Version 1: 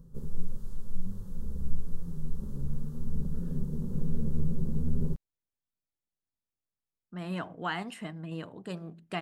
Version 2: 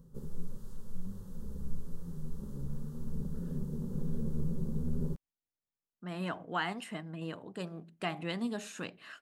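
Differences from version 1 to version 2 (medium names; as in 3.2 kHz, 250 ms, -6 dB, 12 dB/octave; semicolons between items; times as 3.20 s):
speech: entry -1.10 s; master: add bass shelf 120 Hz -8.5 dB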